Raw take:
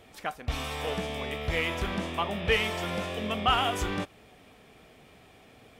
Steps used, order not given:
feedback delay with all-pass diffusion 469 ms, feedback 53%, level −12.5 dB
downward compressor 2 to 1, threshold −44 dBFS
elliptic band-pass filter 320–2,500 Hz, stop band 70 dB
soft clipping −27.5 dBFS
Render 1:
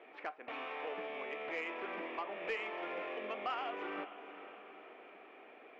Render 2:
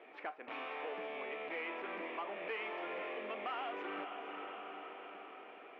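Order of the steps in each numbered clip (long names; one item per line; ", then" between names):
elliptic band-pass filter, then downward compressor, then feedback delay with all-pass diffusion, then soft clipping
feedback delay with all-pass diffusion, then soft clipping, then elliptic band-pass filter, then downward compressor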